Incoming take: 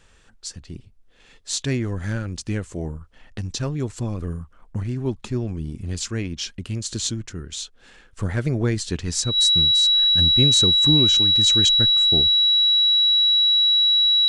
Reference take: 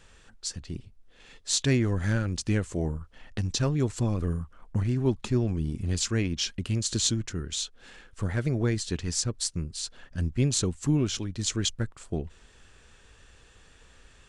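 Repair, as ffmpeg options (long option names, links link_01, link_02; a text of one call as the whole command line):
ffmpeg -i in.wav -af "bandreject=frequency=3900:width=30,asetnsamples=nb_out_samples=441:pad=0,asendcmd='8.17 volume volume -4.5dB',volume=0dB" out.wav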